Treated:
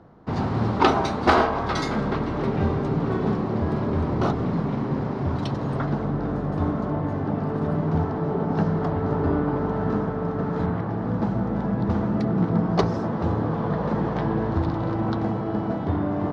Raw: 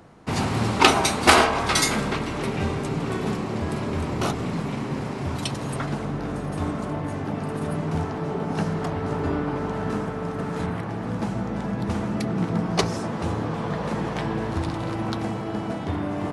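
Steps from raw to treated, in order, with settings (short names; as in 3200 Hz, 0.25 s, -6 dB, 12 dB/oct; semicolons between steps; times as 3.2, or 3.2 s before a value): bell 2500 Hz -10 dB 0.88 oct; AGC gain up to 3.5 dB; air absorption 250 m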